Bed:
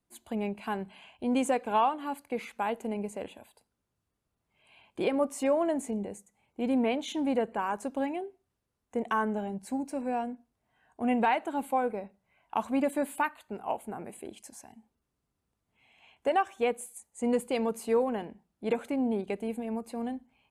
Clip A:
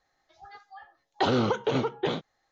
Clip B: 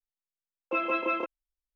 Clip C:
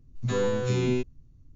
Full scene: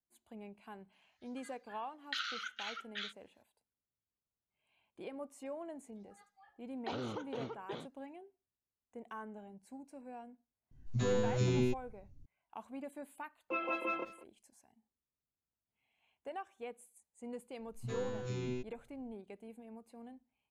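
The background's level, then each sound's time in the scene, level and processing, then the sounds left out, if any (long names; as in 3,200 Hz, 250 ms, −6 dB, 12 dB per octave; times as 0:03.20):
bed −17.5 dB
0:00.92: mix in A −5 dB + Butterworth high-pass 1,300 Hz 96 dB per octave
0:05.66: mix in A −16.5 dB
0:10.71: mix in C −5 dB + parametric band 1,100 Hz −3.5 dB 2.2 octaves
0:12.79: mix in B −8 dB + far-end echo of a speakerphone 190 ms, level −16 dB
0:17.60: mix in C −13.5 dB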